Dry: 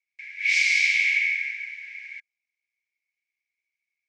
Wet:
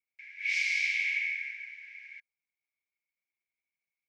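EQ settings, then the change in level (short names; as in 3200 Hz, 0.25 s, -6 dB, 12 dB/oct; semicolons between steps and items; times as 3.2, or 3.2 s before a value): graphic EQ 2000/4000/8000 Hz -5/-5/-10 dB; -2.0 dB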